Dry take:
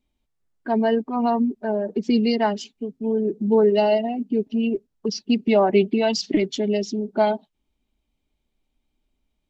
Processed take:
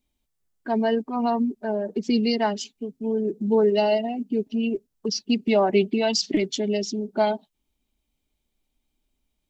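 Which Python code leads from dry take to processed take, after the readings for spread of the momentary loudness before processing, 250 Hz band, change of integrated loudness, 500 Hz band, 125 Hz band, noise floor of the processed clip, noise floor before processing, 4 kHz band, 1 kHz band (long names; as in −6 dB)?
10 LU, −2.5 dB, −2.0 dB, −2.5 dB, can't be measured, −78 dBFS, −76 dBFS, +1.5 dB, −2.0 dB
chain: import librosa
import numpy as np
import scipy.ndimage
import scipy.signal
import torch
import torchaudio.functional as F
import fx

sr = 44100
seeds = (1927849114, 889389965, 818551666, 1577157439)

y = fx.high_shelf(x, sr, hz=5000.0, db=10.5)
y = y * librosa.db_to_amplitude(-2.5)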